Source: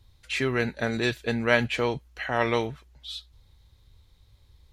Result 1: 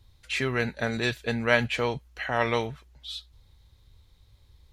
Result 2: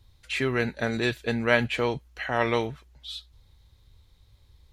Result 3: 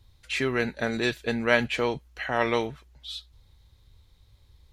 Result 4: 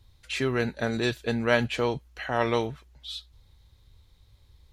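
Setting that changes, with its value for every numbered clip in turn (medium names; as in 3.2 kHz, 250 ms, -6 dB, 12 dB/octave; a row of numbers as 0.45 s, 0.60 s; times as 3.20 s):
dynamic bell, frequency: 320 Hz, 5.7 kHz, 110 Hz, 2.1 kHz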